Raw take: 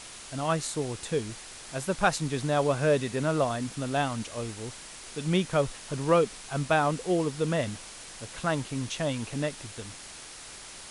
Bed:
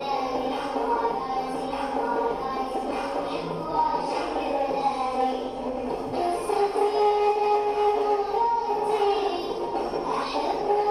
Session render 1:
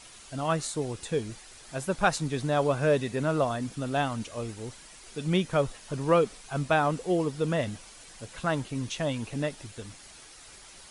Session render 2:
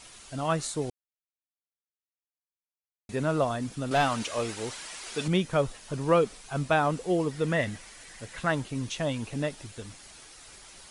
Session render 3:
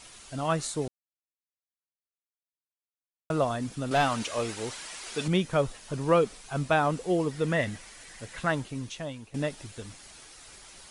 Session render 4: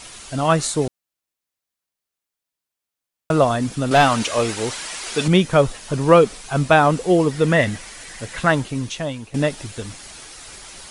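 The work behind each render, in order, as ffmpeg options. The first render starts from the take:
ffmpeg -i in.wav -af "afftdn=noise_reduction=8:noise_floor=-45" out.wav
ffmpeg -i in.wav -filter_complex "[0:a]asettb=1/sr,asplit=3[link_01][link_02][link_03];[link_01]atrim=end=3.914[link_04];[link_02]atrim=start=3.91:end=5.28,asetpts=PTS-STARTPTS,afade=type=in:duration=0.004:curve=qsin,afade=type=out:start_time=1.366:duration=0.004:curve=qsin,asplit=2[link_05][link_06];[link_06]highpass=frequency=720:poles=1,volume=16dB,asoftclip=type=tanh:threshold=-15dB[link_07];[link_05][link_07]amix=inputs=2:normalize=0,lowpass=frequency=6300:poles=1,volume=-6dB[link_08];[link_03]atrim=start=5.276[link_09];[link_04][link_08]acrossfade=duration=0.004:curve1=hsin:curve2=qsin[link_10];[link_10][link_09]acrossfade=duration=0.004:curve1=qsin:curve2=hsin,asettb=1/sr,asplit=3[link_11][link_12][link_13];[link_11]atrim=end=7.314[link_14];[link_12]atrim=start=7.31:end=8.52,asetpts=PTS-STARTPTS,afade=type=in:duration=0.004:curve=qsin,afade=type=out:start_time=1.206:duration=0.004:curve=qsin,equalizer=frequency=1900:width=3.4:gain=9[link_15];[link_13]atrim=start=8.516[link_16];[link_14][link_15]acrossfade=duration=0.004:curve1=hsin:curve2=qsin[link_17];[link_17][link_16]acrossfade=duration=0.004:curve1=qsin:curve2=hsin,asplit=3[link_18][link_19][link_20];[link_18]atrim=end=0.9,asetpts=PTS-STARTPTS,afade=type=out:start_time=0.896:duration=0.004:curve=hsin[link_21];[link_19]atrim=start=0.9:end=3.09,asetpts=PTS-STARTPTS,volume=0[link_22];[link_20]atrim=start=3.09,asetpts=PTS-STARTPTS,afade=type=in:duration=0.004:curve=hsin[link_23];[link_21][link_22][link_23]concat=n=3:v=0:a=1" out.wav
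ffmpeg -i in.wav -filter_complex "[0:a]asplit=4[link_01][link_02][link_03][link_04];[link_01]atrim=end=0.88,asetpts=PTS-STARTPTS,afade=type=out:start_time=0.876:duration=0.004:curve=hsin[link_05];[link_02]atrim=start=0.88:end=3.3,asetpts=PTS-STARTPTS,volume=0[link_06];[link_03]atrim=start=3.3:end=9.34,asetpts=PTS-STARTPTS,afade=type=in:duration=0.004:curve=hsin,afade=type=out:start_time=5.16:duration=0.88:silence=0.188365[link_07];[link_04]atrim=start=9.34,asetpts=PTS-STARTPTS,afade=type=in:duration=0.004:curve=hsin:silence=0.188365[link_08];[link_05][link_06][link_07][link_08]concat=n=4:v=0:a=1" out.wav
ffmpeg -i in.wav -af "volume=10.5dB" out.wav

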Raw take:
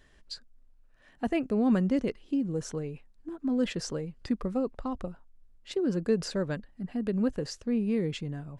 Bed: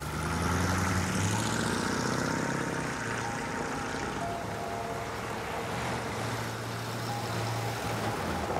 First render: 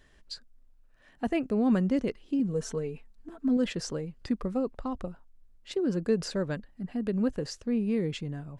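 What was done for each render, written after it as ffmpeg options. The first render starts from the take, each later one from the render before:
ffmpeg -i in.wav -filter_complex "[0:a]asettb=1/sr,asplit=3[link_01][link_02][link_03];[link_01]atrim=end=2.394[link_04];[link_02]atrim=start=2.39:end=3.57,asetpts=PTS-STARTPTS,afade=type=in:duration=0.004:curve=qsin,afade=type=out:start_time=1.176:duration=0.004:curve=qsin,aecho=1:1:4.5:0.65,atrim=end_sample=52038[link_05];[link_03]atrim=start=3.566[link_06];[link_04][link_05]acrossfade=duration=0.004:curve1=hsin:curve2=qsin[link_07];[link_07][link_06]acrossfade=duration=0.004:curve1=qsin:curve2=hsin" out.wav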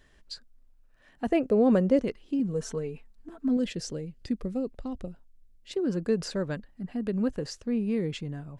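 ffmpeg -i in.wav -filter_complex "[0:a]asettb=1/sr,asplit=3[link_01][link_02][link_03];[link_01]atrim=end=1.324[link_04];[link_02]atrim=start=1.32:end=2.01,asetpts=PTS-STARTPTS,afade=type=in:duration=0.004:curve=qsin,afade=type=out:start_time=0.686:duration=0.004:curve=qsin,equalizer=frequency=510:width=1.7:gain=11[link_05];[link_03]atrim=start=2.006[link_06];[link_04][link_05]acrossfade=duration=0.004:curve1=hsin:curve2=qsin[link_07];[link_07][link_06]acrossfade=duration=0.004:curve1=qsin:curve2=hsin,asettb=1/sr,asplit=3[link_08][link_09][link_10];[link_08]atrim=end=3.594[link_11];[link_09]atrim=start=3.59:end=5.73,asetpts=PTS-STARTPTS,afade=type=in:duration=0.004:curve=qsin,afade=type=out:start_time=2.136:duration=0.004:curve=qsin,equalizer=frequency=1100:width=1.2:gain=-11.5[link_12];[link_10]atrim=start=5.726[link_13];[link_11][link_12]acrossfade=duration=0.004:curve1=hsin:curve2=qsin[link_14];[link_14][link_13]acrossfade=duration=0.004:curve1=qsin:curve2=hsin" out.wav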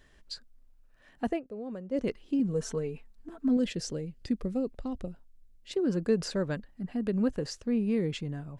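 ffmpeg -i in.wav -filter_complex "[0:a]asplit=3[link_01][link_02][link_03];[link_01]atrim=end=1.41,asetpts=PTS-STARTPTS,afade=type=out:start_time=1.24:duration=0.17:silence=0.133352[link_04];[link_02]atrim=start=1.41:end=1.9,asetpts=PTS-STARTPTS,volume=-17.5dB[link_05];[link_03]atrim=start=1.9,asetpts=PTS-STARTPTS,afade=type=in:duration=0.17:silence=0.133352[link_06];[link_04][link_05][link_06]concat=n=3:v=0:a=1" out.wav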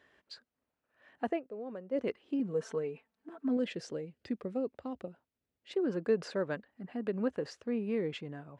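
ffmpeg -i in.wav -af "highpass=frequency=75:width=0.5412,highpass=frequency=75:width=1.3066,bass=frequency=250:gain=-12,treble=frequency=4000:gain=-14" out.wav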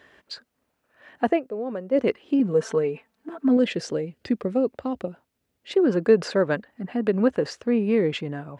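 ffmpeg -i in.wav -af "volume=12dB" out.wav

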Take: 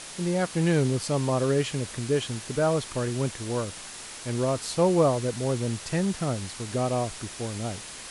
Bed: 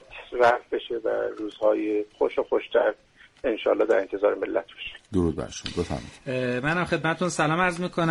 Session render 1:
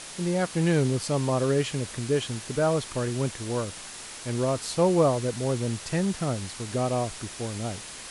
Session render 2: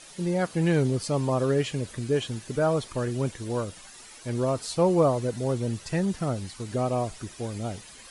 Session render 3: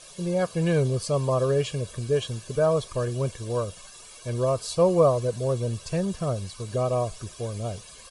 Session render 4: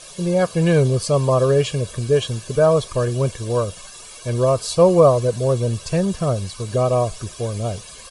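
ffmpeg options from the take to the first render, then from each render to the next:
ffmpeg -i in.wav -af anull out.wav
ffmpeg -i in.wav -af "afftdn=noise_reduction=11:noise_floor=-41" out.wav
ffmpeg -i in.wav -af "equalizer=frequency=1900:width_type=o:width=0.34:gain=-9.5,aecho=1:1:1.8:0.59" out.wav
ffmpeg -i in.wav -af "volume=7dB,alimiter=limit=-2dB:level=0:latency=1" out.wav

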